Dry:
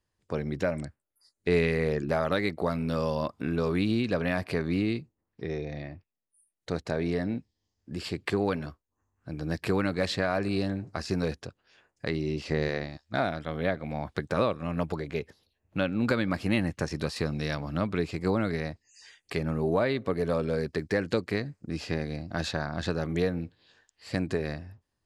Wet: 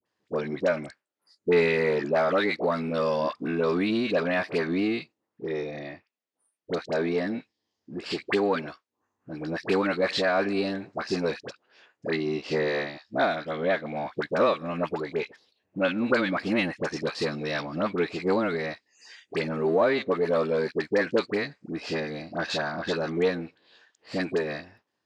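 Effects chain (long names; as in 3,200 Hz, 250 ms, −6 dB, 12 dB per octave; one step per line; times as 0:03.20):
gain on one half-wave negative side −3 dB
band-pass filter 270–5,300 Hz
all-pass dispersion highs, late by 60 ms, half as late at 980 Hz
level +6.5 dB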